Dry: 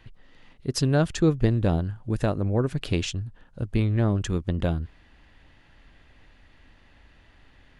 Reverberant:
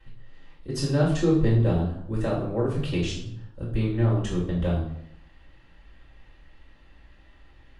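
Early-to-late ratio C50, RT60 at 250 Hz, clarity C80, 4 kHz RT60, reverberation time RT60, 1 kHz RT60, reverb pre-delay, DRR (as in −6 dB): 4.5 dB, 0.80 s, 8.5 dB, 0.55 s, 0.75 s, 0.70 s, 3 ms, −10.0 dB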